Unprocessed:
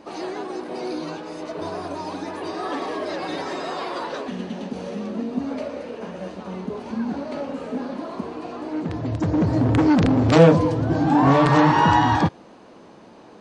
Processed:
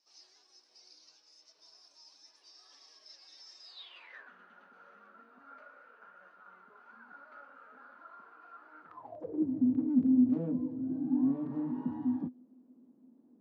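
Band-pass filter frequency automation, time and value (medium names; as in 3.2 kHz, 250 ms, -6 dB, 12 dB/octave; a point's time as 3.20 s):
band-pass filter, Q 17
3.62 s 5.4 kHz
4.30 s 1.4 kHz
8.87 s 1.4 kHz
9.51 s 250 Hz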